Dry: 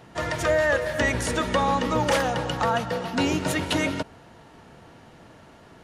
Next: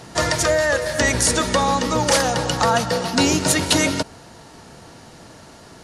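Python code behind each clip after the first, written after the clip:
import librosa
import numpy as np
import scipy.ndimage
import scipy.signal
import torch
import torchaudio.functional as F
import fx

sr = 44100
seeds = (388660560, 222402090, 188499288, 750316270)

y = fx.rider(x, sr, range_db=10, speed_s=0.5)
y = fx.band_shelf(y, sr, hz=6800.0, db=10.0, octaves=1.7)
y = y * 10.0 ** (4.5 / 20.0)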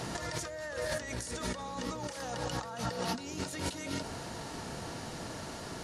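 y = fx.over_compress(x, sr, threshold_db=-30.0, ratio=-1.0)
y = y + 10.0 ** (-20.5 / 20.0) * np.pad(y, (int(565 * sr / 1000.0), 0))[:len(y)]
y = y * 10.0 ** (-8.0 / 20.0)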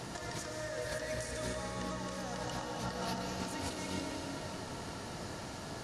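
y = fx.rev_freeverb(x, sr, rt60_s=4.4, hf_ratio=0.85, predelay_ms=90, drr_db=-0.5)
y = y * 10.0 ** (-5.0 / 20.0)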